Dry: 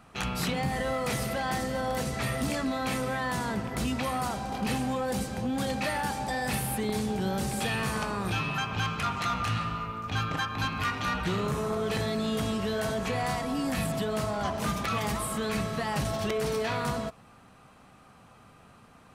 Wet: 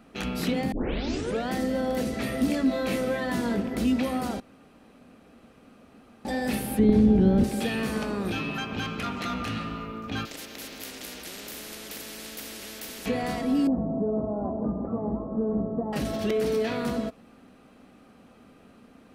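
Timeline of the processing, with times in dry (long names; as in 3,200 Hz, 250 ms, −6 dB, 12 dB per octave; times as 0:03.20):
0:00.72: tape start 0.78 s
0:02.67–0:03.63: double-tracking delay 21 ms −4 dB
0:04.40–0:06.25: fill with room tone
0:06.79–0:07.44: RIAA equalisation playback
0:10.25–0:13.06: every bin compressed towards the loudest bin 10 to 1
0:13.67–0:15.93: Butterworth low-pass 1,000 Hz
whole clip: octave-band graphic EQ 125/250/500/1,000/8,000 Hz −9/+10/+4/−7/−5 dB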